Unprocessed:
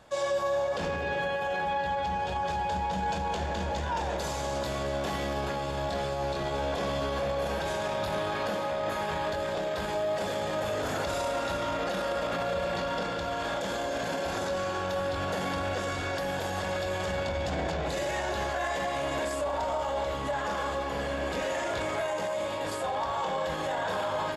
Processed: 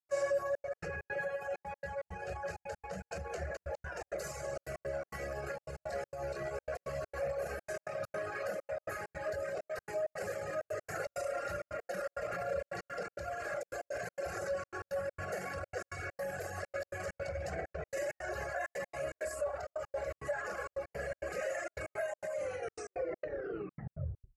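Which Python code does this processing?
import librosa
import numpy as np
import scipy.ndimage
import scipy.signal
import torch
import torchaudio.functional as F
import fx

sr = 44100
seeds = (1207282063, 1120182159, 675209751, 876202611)

y = fx.tape_stop_end(x, sr, length_s=2.03)
y = fx.fixed_phaser(y, sr, hz=940.0, stages=6)
y = fx.dereverb_blind(y, sr, rt60_s=1.8)
y = scipy.signal.sosfilt(scipy.signal.butter(2, 70.0, 'highpass', fs=sr, output='sos'), y)
y = fx.step_gate(y, sr, bpm=164, pattern='.xxxxx.x.xx', floor_db=-60.0, edge_ms=4.5)
y = y * 10.0 ** (-1.5 / 20.0)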